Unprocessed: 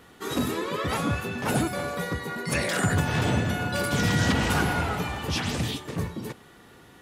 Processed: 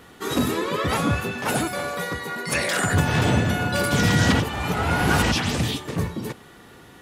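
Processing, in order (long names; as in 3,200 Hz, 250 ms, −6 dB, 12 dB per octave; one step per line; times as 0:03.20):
0:01.31–0:02.94: low-shelf EQ 340 Hz −8 dB
0:04.40–0:05.32: reverse
level +4.5 dB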